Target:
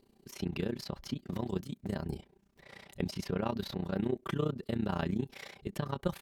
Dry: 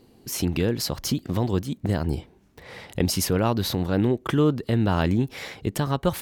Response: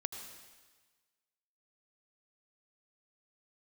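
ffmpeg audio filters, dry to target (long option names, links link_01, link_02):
-filter_complex "[0:a]aecho=1:1:5.1:0.47,acrossover=split=4400[link_01][link_02];[link_02]acompressor=threshold=-43dB:ratio=6[link_03];[link_01][link_03]amix=inputs=2:normalize=0,tremolo=f=30:d=0.889,volume=-8dB"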